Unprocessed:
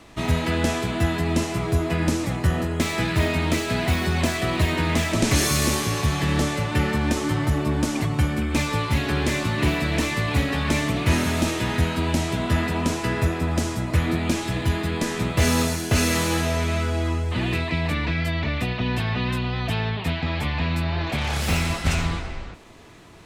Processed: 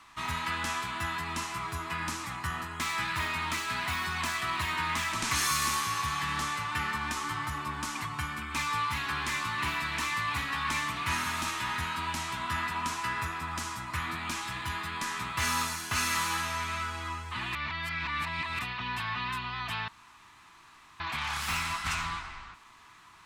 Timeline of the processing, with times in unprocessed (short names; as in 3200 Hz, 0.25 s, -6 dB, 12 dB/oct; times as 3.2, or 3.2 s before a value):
17.55–18.59 reverse
19.88–21 room tone
whole clip: resonant low shelf 760 Hz -11.5 dB, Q 3; gain -6 dB